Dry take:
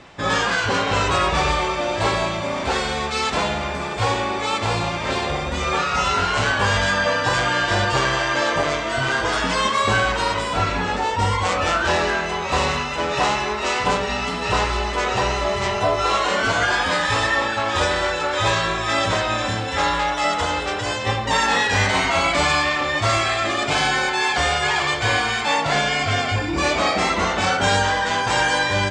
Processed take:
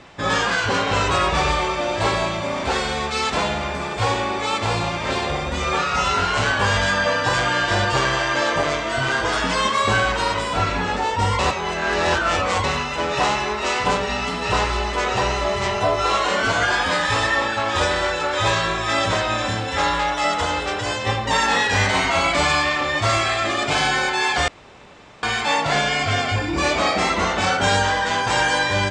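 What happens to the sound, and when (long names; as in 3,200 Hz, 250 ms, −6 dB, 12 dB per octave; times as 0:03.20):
0:11.39–0:12.64: reverse
0:24.48–0:25.23: fill with room tone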